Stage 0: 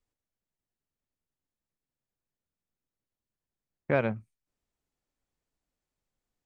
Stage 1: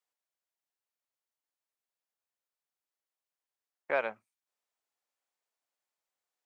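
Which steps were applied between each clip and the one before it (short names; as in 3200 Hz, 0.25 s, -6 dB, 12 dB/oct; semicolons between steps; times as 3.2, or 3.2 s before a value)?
Chebyshev high-pass 730 Hz, order 2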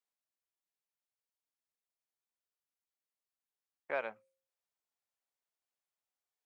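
de-hum 177.7 Hz, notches 3; gain -6 dB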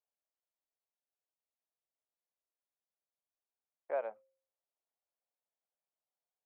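band-pass 610 Hz, Q 1.8; gain +3 dB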